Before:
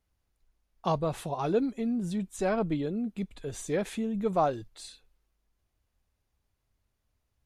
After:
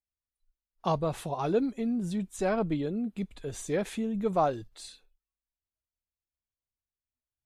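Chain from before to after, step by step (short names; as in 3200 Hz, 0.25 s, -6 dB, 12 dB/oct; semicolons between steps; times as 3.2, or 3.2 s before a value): spectral noise reduction 23 dB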